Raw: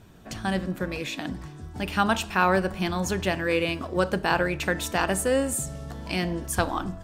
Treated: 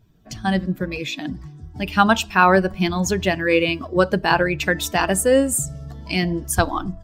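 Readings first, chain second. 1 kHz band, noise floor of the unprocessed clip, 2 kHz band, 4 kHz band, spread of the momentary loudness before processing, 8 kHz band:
+6.5 dB, -42 dBFS, +6.0 dB, +6.0 dB, 11 LU, +6.5 dB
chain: expander on every frequency bin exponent 1.5; trim +9 dB

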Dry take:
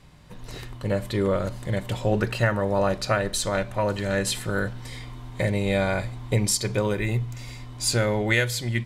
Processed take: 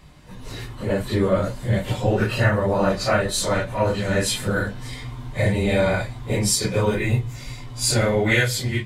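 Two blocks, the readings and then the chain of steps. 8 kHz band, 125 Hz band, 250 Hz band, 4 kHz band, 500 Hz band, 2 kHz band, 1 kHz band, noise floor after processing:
+3.5 dB, +3.5 dB, +3.5 dB, +3.5 dB, +3.5 dB, +3.5 dB, +3.0 dB, -37 dBFS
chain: phase randomisation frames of 100 ms; trim +3.5 dB

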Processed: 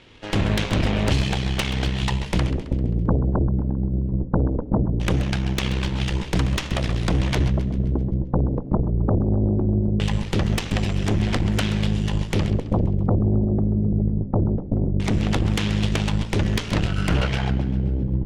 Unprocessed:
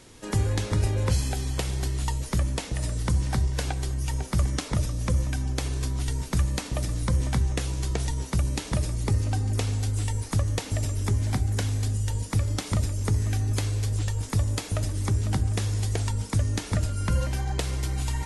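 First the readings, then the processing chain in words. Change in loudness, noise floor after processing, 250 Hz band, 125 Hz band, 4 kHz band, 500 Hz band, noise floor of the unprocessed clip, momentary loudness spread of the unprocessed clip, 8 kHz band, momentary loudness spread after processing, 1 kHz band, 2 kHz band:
+4.5 dB, -32 dBFS, +11.0 dB, +3.5 dB, +6.0 dB, +8.0 dB, -39 dBFS, 4 LU, -5.0 dB, 3 LU, +5.0 dB, +7.0 dB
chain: LFO low-pass square 0.2 Hz 230–3000 Hz; Chebyshev shaper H 8 -9 dB, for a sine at -10.5 dBFS; modulated delay 132 ms, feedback 53%, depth 120 cents, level -13 dB

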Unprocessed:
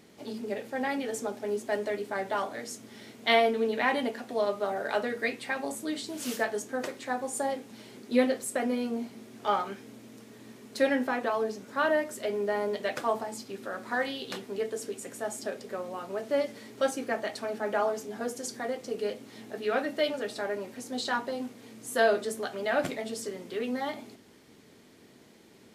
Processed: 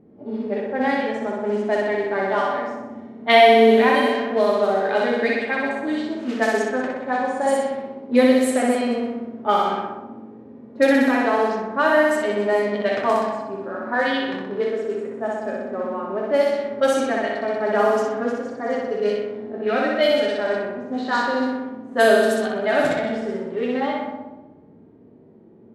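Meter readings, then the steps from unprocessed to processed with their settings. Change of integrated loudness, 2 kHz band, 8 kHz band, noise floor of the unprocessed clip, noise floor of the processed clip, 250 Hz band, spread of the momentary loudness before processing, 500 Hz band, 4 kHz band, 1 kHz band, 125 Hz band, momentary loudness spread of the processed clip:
+10.5 dB, +9.5 dB, +1.0 dB, -56 dBFS, -48 dBFS, +11.5 dB, 12 LU, +10.5 dB, +8.0 dB, +10.5 dB, no reading, 12 LU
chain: flutter echo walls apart 10.7 m, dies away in 1.4 s; harmonic-percussive split harmonic +8 dB; level-controlled noise filter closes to 510 Hz, open at -13.5 dBFS

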